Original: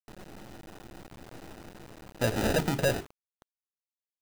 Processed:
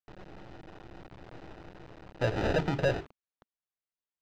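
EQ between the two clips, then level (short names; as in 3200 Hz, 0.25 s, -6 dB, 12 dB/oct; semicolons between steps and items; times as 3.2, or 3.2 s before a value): air absorption 190 m; bell 230 Hz -13 dB 0.21 oct; 0.0 dB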